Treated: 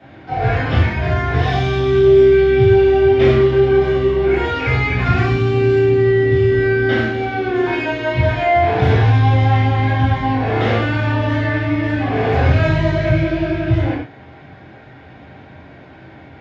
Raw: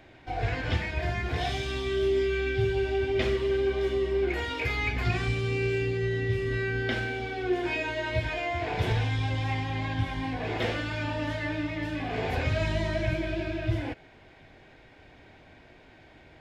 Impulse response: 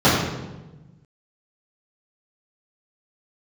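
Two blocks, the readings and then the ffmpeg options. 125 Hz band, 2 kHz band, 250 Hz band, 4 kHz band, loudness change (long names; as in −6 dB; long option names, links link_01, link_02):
+14.5 dB, +10.5 dB, +14.0 dB, +7.0 dB, +14.0 dB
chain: -filter_complex "[0:a]equalizer=frequency=1600:width=0.65:gain=5.5[link_01];[1:a]atrim=start_sample=2205,atrim=end_sample=6174[link_02];[link_01][link_02]afir=irnorm=-1:irlink=0,volume=-15.5dB"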